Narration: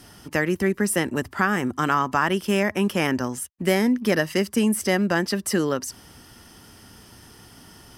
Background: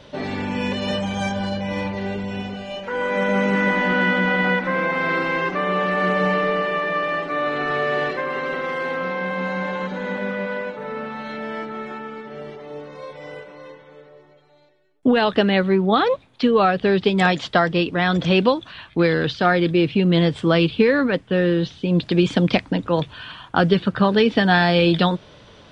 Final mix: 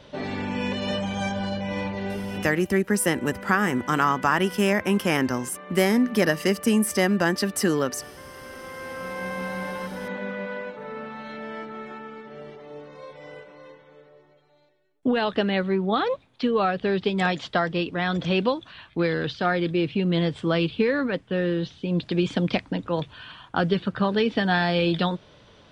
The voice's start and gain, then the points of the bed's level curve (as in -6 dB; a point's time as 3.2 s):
2.10 s, 0.0 dB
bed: 2.45 s -3.5 dB
2.75 s -20 dB
8.19 s -20 dB
9.25 s -6 dB